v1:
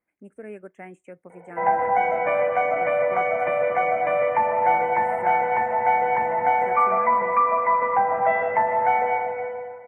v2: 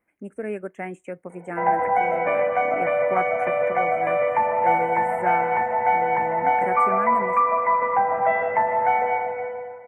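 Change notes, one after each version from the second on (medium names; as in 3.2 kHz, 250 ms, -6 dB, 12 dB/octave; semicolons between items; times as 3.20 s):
speech +8.5 dB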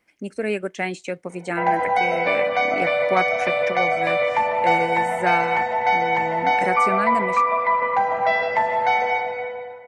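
speech +5.0 dB; master: remove Butterworth band-stop 4.5 kHz, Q 0.56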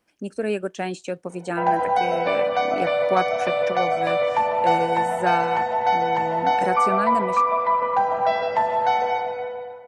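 master: add peaking EQ 2.1 kHz -14 dB 0.29 oct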